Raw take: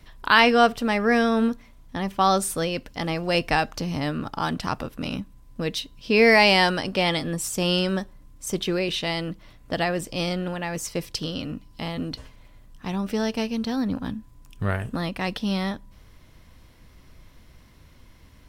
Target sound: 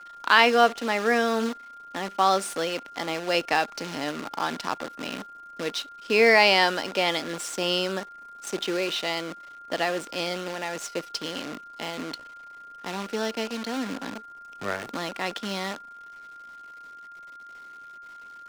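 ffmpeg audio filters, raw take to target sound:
-filter_complex "[0:a]acrusher=bits=6:dc=4:mix=0:aa=0.000001,aeval=exprs='val(0)+0.00891*sin(2*PI*1400*n/s)':c=same,acrossover=split=240 7900:gain=0.0708 1 0.251[a][b][c];[a][b][c]amix=inputs=3:normalize=0,volume=-1dB"

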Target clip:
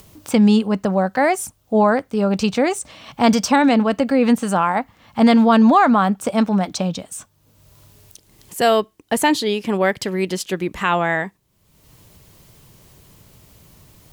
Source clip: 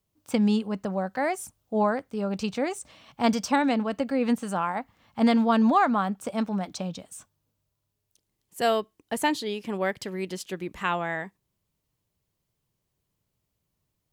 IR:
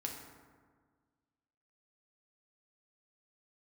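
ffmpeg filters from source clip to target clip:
-filter_complex "[0:a]asplit=2[a][b];[b]alimiter=limit=-19dB:level=0:latency=1:release=16,volume=3dB[c];[a][c]amix=inputs=2:normalize=0,acompressor=mode=upward:threshold=-34dB:ratio=2.5,volume=3dB"

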